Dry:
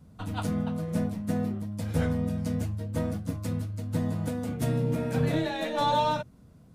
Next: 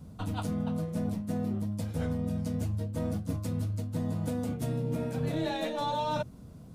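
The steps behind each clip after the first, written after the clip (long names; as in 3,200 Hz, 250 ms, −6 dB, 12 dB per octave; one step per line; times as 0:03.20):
parametric band 1,800 Hz −4.5 dB 1.1 octaves
reversed playback
downward compressor 6 to 1, threshold −35 dBFS, peak gain reduction 13 dB
reversed playback
level +6 dB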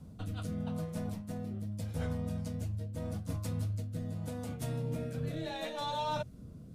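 rotating-speaker cabinet horn 0.8 Hz
dynamic equaliser 280 Hz, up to −7 dB, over −45 dBFS, Q 0.73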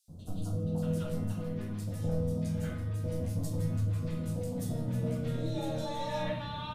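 three-band delay without the direct sound highs, lows, mids 80/630 ms, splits 990/3,800 Hz
convolution reverb RT60 0.75 s, pre-delay 6 ms, DRR −1 dB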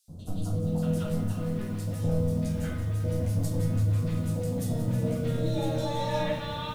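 feedback echo at a low word length 182 ms, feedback 80%, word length 9 bits, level −12.5 dB
level +4.5 dB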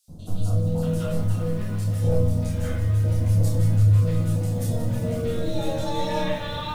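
multi-voice chorus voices 6, 0.3 Hz, delay 29 ms, depth 2 ms
level +7 dB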